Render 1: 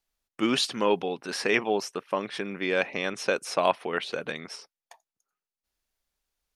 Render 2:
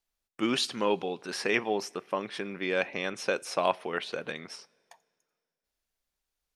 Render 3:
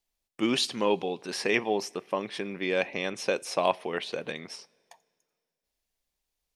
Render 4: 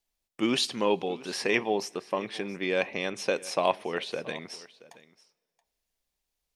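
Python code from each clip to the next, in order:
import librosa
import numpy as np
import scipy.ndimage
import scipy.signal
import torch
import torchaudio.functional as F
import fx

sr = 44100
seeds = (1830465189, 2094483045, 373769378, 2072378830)

y1 = fx.rev_double_slope(x, sr, seeds[0], early_s=0.3, late_s=2.4, knee_db=-18, drr_db=19.0)
y1 = F.gain(torch.from_numpy(y1), -3.0).numpy()
y2 = fx.peak_eq(y1, sr, hz=1400.0, db=-7.0, octaves=0.5)
y2 = F.gain(torch.from_numpy(y2), 2.0).numpy()
y3 = y2 + 10.0 ** (-20.0 / 20.0) * np.pad(y2, (int(676 * sr / 1000.0), 0))[:len(y2)]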